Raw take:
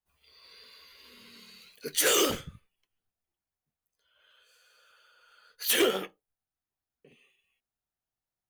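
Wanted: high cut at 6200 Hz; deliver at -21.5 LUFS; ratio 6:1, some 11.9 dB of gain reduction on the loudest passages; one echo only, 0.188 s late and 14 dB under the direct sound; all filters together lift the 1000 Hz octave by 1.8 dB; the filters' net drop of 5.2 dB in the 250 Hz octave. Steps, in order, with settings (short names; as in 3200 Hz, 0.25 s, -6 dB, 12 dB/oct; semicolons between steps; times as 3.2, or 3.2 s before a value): LPF 6200 Hz; bell 250 Hz -9 dB; bell 1000 Hz +3 dB; compressor 6:1, threshold -35 dBFS; echo 0.188 s -14 dB; gain +19.5 dB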